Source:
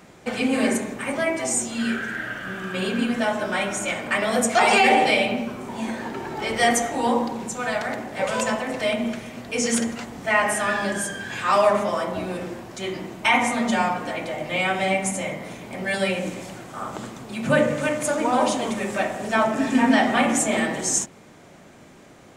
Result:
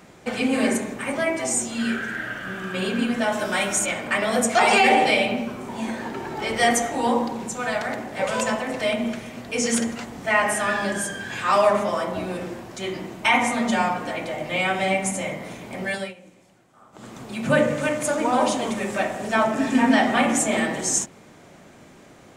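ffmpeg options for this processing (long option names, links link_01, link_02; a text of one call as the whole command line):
ffmpeg -i in.wav -filter_complex "[0:a]asettb=1/sr,asplit=3[link_01][link_02][link_03];[link_01]atrim=end=3.324[link_04];[link_02]atrim=start=3.32:end=3.86,asetpts=PTS-STARTPTS,afade=type=in:duration=0.004:curve=qsin,afade=type=out:start_time=0.536:duration=0.004:curve=qsin,highshelf=frequency=4500:gain=10[link_05];[link_03]atrim=start=3.856[link_06];[link_04][link_05]acrossfade=duration=0.004:curve1=hsin:curve2=qsin[link_07];[link_07][link_06]acrossfade=duration=0.004:curve1=qsin:curve2=hsin,asplit=3[link_08][link_09][link_10];[link_08]atrim=end=16.14,asetpts=PTS-STARTPTS,afade=type=out:start_time=15.85:duration=0.29:silence=0.0944061[link_11];[link_09]atrim=start=16.14:end=16.92,asetpts=PTS-STARTPTS,volume=-20.5dB[link_12];[link_10]atrim=start=16.92,asetpts=PTS-STARTPTS,afade=type=in:duration=0.29:silence=0.0944061[link_13];[link_11][link_12][link_13]concat=n=3:v=0:a=1" out.wav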